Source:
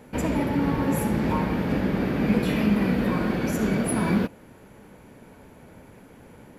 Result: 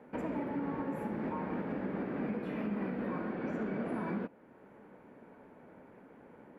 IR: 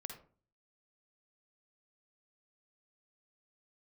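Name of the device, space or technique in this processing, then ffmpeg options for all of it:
DJ mixer with the lows and highs turned down: -filter_complex "[0:a]asettb=1/sr,asplit=3[link_01][link_02][link_03];[link_01]atrim=end=3.334[link_04];[link_02]atrim=start=3.33:end=3.94,asetpts=PTS-STARTPTS,afade=type=in:duration=0.004:curve=qsin,afade=type=out:start_time=0.606:duration=0.004:curve=qsin,lowpass=6000[link_05];[link_03]atrim=start=3.936[link_06];[link_04][link_05]acrossfade=duration=0.004:curve1=hsin:curve2=qsin[link_07];[link_07][link_06]acrossfade=duration=0.004:curve1=qsin:curve2=hsin,acrossover=split=180 2200:gain=0.158 1 0.0891[link_08][link_09][link_10];[link_08][link_09][link_10]amix=inputs=3:normalize=0,alimiter=limit=-22dB:level=0:latency=1:release=438,volume=-5dB"

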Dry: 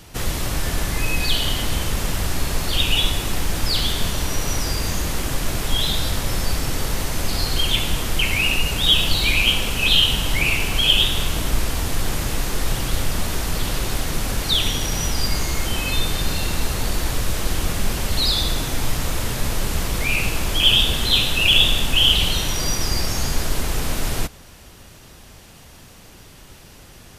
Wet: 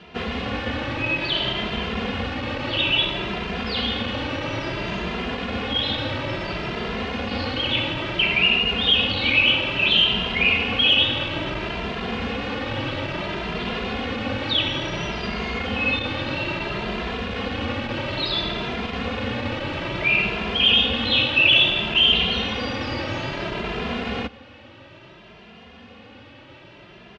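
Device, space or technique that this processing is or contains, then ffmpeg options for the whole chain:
barber-pole flanger into a guitar amplifier: -filter_complex "[0:a]asplit=2[link_01][link_02];[link_02]adelay=2.5,afreqshift=0.59[link_03];[link_01][link_03]amix=inputs=2:normalize=1,asoftclip=type=tanh:threshold=-13.5dB,highpass=110,equalizer=frequency=150:width_type=q:width=4:gain=-7,equalizer=frequency=230:width_type=q:width=4:gain=5,equalizer=frequency=530:width_type=q:width=4:gain=4,equalizer=frequency=2700:width_type=q:width=4:gain=4,lowpass=frequency=3400:width=0.5412,lowpass=frequency=3400:width=1.3066,volume=4.5dB"

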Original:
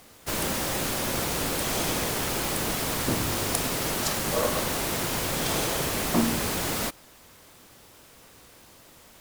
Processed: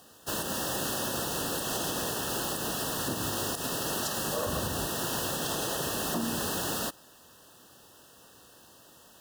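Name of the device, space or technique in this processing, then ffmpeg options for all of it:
PA system with an anti-feedback notch: -filter_complex "[0:a]asettb=1/sr,asplit=3[link_01][link_02][link_03];[link_01]atrim=end=4.464[link_04];[link_02]atrim=start=4.46:end=4.87,asetpts=PTS-STARTPTS,afade=type=in:duration=0.004:curve=qsin,afade=type=out:start_time=0.406:duration=0.004:curve=qsin,equalizer=frequency=72:width_type=o:width=2.2:gain=13.5[link_05];[link_03]atrim=start=4.866[link_06];[link_04][link_05]acrossfade=duration=0.004:curve1=hsin:curve2=qsin[link_07];[link_07][link_06]acrossfade=duration=0.004:curve1=qsin:curve2=hsin,highpass=frequency=120:poles=1,asuperstop=centerf=2200:order=20:qfactor=3.2,alimiter=limit=-18.5dB:level=0:latency=1:release=115,volume=-2.5dB"

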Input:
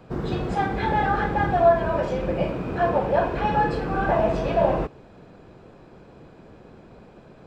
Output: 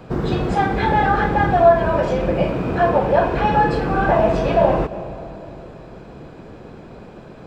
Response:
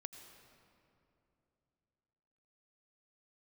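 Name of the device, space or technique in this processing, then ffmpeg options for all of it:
ducked reverb: -filter_complex "[0:a]asplit=3[link_01][link_02][link_03];[1:a]atrim=start_sample=2205[link_04];[link_02][link_04]afir=irnorm=-1:irlink=0[link_05];[link_03]apad=whole_len=329198[link_06];[link_05][link_06]sidechaincompress=threshold=-30dB:ratio=8:attack=16:release=174,volume=1dB[link_07];[link_01][link_07]amix=inputs=2:normalize=0,volume=4dB"

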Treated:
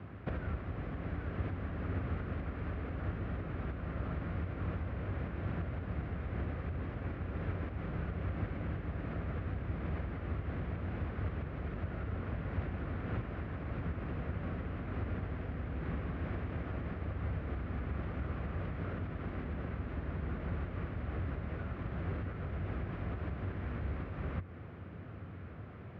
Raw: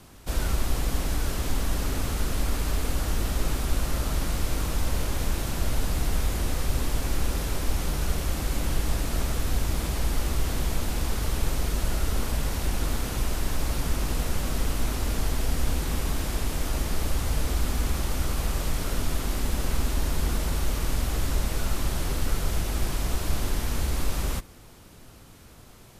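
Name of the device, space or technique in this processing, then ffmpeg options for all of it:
bass amplifier: -af "acompressor=threshold=-33dB:ratio=6,highpass=frequency=65:width=0.5412,highpass=frequency=65:width=1.3066,equalizer=frequency=93:width_type=q:width=4:gain=9,equalizer=frequency=170:width_type=q:width=4:gain=4,equalizer=frequency=900:width_type=q:width=4:gain=-7,lowpass=frequency=2100:width=0.5412,lowpass=frequency=2100:width=1.3066,volume=2.5dB"

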